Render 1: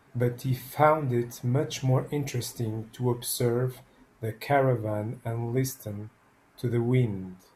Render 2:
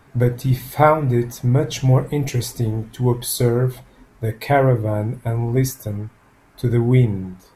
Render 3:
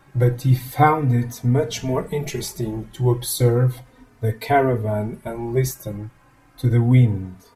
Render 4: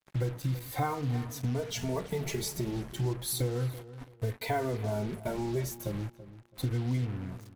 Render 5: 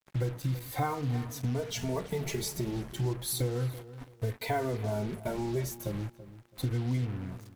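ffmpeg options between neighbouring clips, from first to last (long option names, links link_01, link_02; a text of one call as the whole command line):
ffmpeg -i in.wav -af "lowshelf=frequency=79:gain=11.5,volume=7dB" out.wav
ffmpeg -i in.wav -filter_complex "[0:a]asplit=2[link_01][link_02];[link_02]adelay=3.2,afreqshift=-0.34[link_03];[link_01][link_03]amix=inputs=2:normalize=1,volume=2dB" out.wav
ffmpeg -i in.wav -filter_complex "[0:a]acompressor=threshold=-29dB:ratio=4,acrusher=bits=6:mix=0:aa=0.5,asplit=2[link_01][link_02];[link_02]adelay=332,lowpass=frequency=2400:poles=1,volume=-15dB,asplit=2[link_03][link_04];[link_04]adelay=332,lowpass=frequency=2400:poles=1,volume=0.29,asplit=2[link_05][link_06];[link_06]adelay=332,lowpass=frequency=2400:poles=1,volume=0.29[link_07];[link_01][link_03][link_05][link_07]amix=inputs=4:normalize=0,volume=-1.5dB" out.wav
ffmpeg -i in.wav -af "acrusher=bits=11:mix=0:aa=0.000001" out.wav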